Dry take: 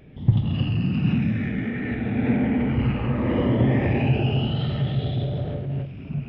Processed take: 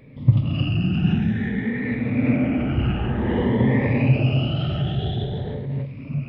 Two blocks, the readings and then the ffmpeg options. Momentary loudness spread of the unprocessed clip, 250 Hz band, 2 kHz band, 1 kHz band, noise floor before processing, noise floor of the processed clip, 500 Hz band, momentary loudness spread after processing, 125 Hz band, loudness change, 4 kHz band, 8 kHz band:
7 LU, +1.5 dB, +2.5 dB, +0.5 dB, −37 dBFS, −35 dBFS, +1.0 dB, 9 LU, +1.5 dB, +1.5 dB, +2.0 dB, can't be measured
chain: -af "afftfilt=real='re*pow(10,11/40*sin(2*PI*(0.97*log(max(b,1)*sr/1024/100)/log(2)-(0.51)*(pts-256)/sr)))':imag='im*pow(10,11/40*sin(2*PI*(0.97*log(max(b,1)*sr/1024/100)/log(2)-(0.51)*(pts-256)/sr)))':win_size=1024:overlap=0.75"

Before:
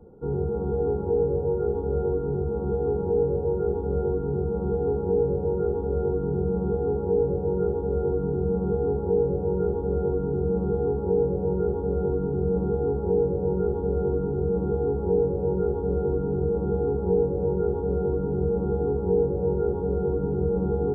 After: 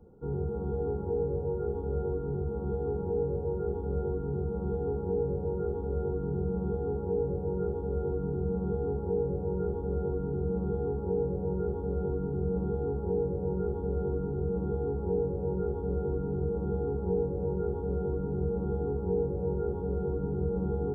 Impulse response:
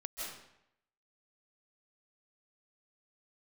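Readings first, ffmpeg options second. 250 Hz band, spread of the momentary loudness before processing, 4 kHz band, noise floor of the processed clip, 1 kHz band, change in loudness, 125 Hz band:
−5.5 dB, 3 LU, can't be measured, −35 dBFS, −6.5 dB, −6.5 dB, −4.0 dB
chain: -af "equalizer=frequency=490:width=0.58:gain=-4,volume=-3.5dB"

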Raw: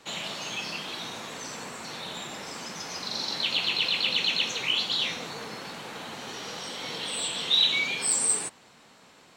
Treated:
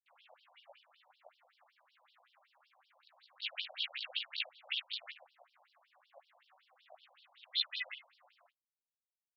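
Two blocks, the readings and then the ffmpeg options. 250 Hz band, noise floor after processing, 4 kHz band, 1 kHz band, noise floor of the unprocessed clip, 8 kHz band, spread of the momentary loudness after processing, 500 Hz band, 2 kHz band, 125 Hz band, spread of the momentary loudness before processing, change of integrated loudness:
below −40 dB, below −85 dBFS, −15.5 dB, −23.0 dB, −56 dBFS, below −40 dB, 10 LU, −22.0 dB, −14.5 dB, below −40 dB, 15 LU, −11.5 dB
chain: -filter_complex "[0:a]aemphasis=mode=reproduction:type=50fm,asplit=2[link_01][link_02];[link_02]aecho=0:1:37|69:0.398|0.168[link_03];[link_01][link_03]amix=inputs=2:normalize=0,adynamicequalizer=threshold=0.00141:dfrequency=660:dqfactor=3.5:tfrequency=660:tqfactor=3.5:attack=5:release=100:ratio=0.375:range=3:mode=cutabove:tftype=bell,adynamicsmooth=sensitivity=5.5:basefreq=2200,acrusher=bits=6:mix=0:aa=0.5,aeval=exprs='val(0)*sin(2*PI*270*n/s)':channel_layout=same,flanger=delay=15.5:depth=2:speed=0.75,afwtdn=0.0126,afftfilt=real='re*between(b*sr/1024,710*pow(4100/710,0.5+0.5*sin(2*PI*5.3*pts/sr))/1.41,710*pow(4100/710,0.5+0.5*sin(2*PI*5.3*pts/sr))*1.41)':imag='im*between(b*sr/1024,710*pow(4100/710,0.5+0.5*sin(2*PI*5.3*pts/sr))/1.41,710*pow(4100/710,0.5+0.5*sin(2*PI*5.3*pts/sr))*1.41)':win_size=1024:overlap=0.75"

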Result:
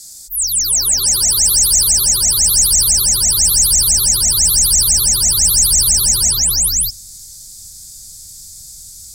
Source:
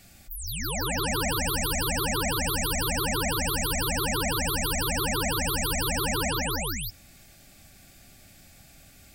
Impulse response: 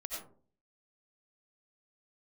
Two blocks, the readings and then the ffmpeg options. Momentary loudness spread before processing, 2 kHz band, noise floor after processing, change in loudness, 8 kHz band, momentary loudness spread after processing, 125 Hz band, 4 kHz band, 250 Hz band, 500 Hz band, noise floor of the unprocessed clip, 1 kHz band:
5 LU, −7.0 dB, −36 dBFS, +17.0 dB, +22.5 dB, 4 LU, +4.5 dB, +15.0 dB, −4.0 dB, can't be measured, −53 dBFS, −6.5 dB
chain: -filter_complex "[0:a]asubboost=boost=6:cutoff=140,lowpass=8800,aexciter=amount=15.7:drive=9.3:freq=4300,asplit=2[link_01][link_02];[1:a]atrim=start_sample=2205,highshelf=frequency=4000:gain=-11[link_03];[link_02][link_03]afir=irnorm=-1:irlink=0,volume=-21dB[link_04];[link_01][link_04]amix=inputs=2:normalize=0,volume=-6dB"

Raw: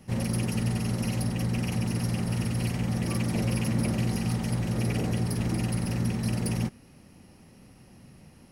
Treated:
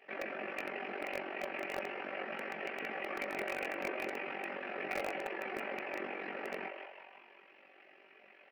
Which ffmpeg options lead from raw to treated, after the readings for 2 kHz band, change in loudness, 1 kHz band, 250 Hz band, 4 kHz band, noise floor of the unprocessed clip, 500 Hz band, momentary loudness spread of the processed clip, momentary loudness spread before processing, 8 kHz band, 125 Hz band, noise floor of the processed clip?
+2.0 dB, −11.0 dB, −0.5 dB, −19.0 dB, −10.5 dB, −54 dBFS, −2.0 dB, 21 LU, 2 LU, −22.0 dB, −37.0 dB, −62 dBFS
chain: -filter_complex "[0:a]afftfilt=real='hypot(re,im)*cos(2*PI*random(0))':imag='hypot(re,im)*sin(2*PI*random(1))':win_size=512:overlap=0.75,aeval=exprs='val(0)+0.000447*(sin(2*PI*50*n/s)+sin(2*PI*2*50*n/s)/2+sin(2*PI*3*50*n/s)/3+sin(2*PI*4*50*n/s)/4+sin(2*PI*5*50*n/s)/5)':channel_layout=same,acrossover=split=2000[link_01][link_02];[link_02]acompressor=threshold=-56dB:ratio=10[link_03];[link_01][link_03]amix=inputs=2:normalize=0,aeval=exprs='val(0)*sin(2*PI*23*n/s)':channel_layout=same,highpass=frequency=460:width=0.5412,highpass=frequency=460:width=1.3066,equalizer=frequency=480:width_type=q:width=4:gain=-3,equalizer=frequency=960:width_type=q:width=4:gain=-10,equalizer=frequency=1700:width_type=q:width=4:gain=4,equalizer=frequency=2400:width_type=q:width=4:gain=8,lowpass=frequency=2600:width=0.5412,lowpass=frequency=2600:width=1.3066,asplit=7[link_04][link_05][link_06][link_07][link_08][link_09][link_10];[link_05]adelay=174,afreqshift=94,volume=-6dB[link_11];[link_06]adelay=348,afreqshift=188,volume=-12dB[link_12];[link_07]adelay=522,afreqshift=282,volume=-18dB[link_13];[link_08]adelay=696,afreqshift=376,volume=-24.1dB[link_14];[link_09]adelay=870,afreqshift=470,volume=-30.1dB[link_15];[link_10]adelay=1044,afreqshift=564,volume=-36.1dB[link_16];[link_04][link_11][link_12][link_13][link_14][link_15][link_16]amix=inputs=7:normalize=0,flanger=delay=18:depth=2.8:speed=0.37,aecho=1:1:5.2:0.38,asplit=2[link_17][link_18];[link_18]acrusher=bits=4:dc=4:mix=0:aa=0.000001,volume=-8.5dB[link_19];[link_17][link_19]amix=inputs=2:normalize=0,volume=12dB"

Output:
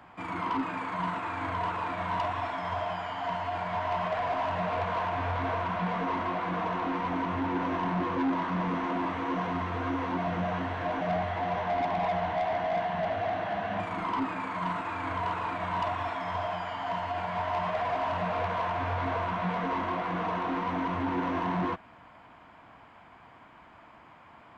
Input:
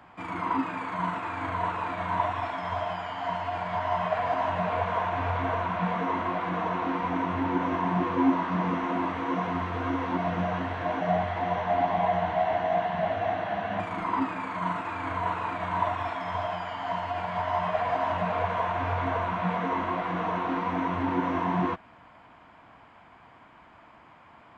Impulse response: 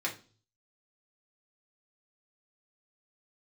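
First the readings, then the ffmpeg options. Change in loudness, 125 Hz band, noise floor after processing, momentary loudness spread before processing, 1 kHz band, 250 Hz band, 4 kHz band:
−2.5 dB, −2.0 dB, −54 dBFS, 5 LU, −2.5 dB, −2.5 dB, 0.0 dB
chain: -af "asoftclip=type=tanh:threshold=-24dB"

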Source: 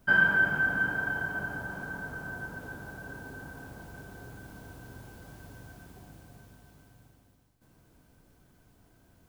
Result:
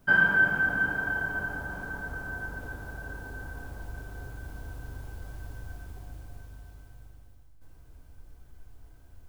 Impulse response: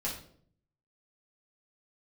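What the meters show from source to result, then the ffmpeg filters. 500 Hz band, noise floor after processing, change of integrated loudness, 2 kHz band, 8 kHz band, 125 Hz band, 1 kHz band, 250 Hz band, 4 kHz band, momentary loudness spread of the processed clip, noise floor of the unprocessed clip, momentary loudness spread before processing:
+1.0 dB, −53 dBFS, +1.0 dB, +1.5 dB, 0.0 dB, +3.0 dB, +1.0 dB, 0.0 dB, −1.0 dB, 22 LU, −63 dBFS, 25 LU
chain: -filter_complex "[0:a]asubboost=boost=9.5:cutoff=57,asplit=2[link_01][link_02];[1:a]atrim=start_sample=2205,lowpass=2200[link_03];[link_02][link_03]afir=irnorm=-1:irlink=0,volume=-13.5dB[link_04];[link_01][link_04]amix=inputs=2:normalize=0"

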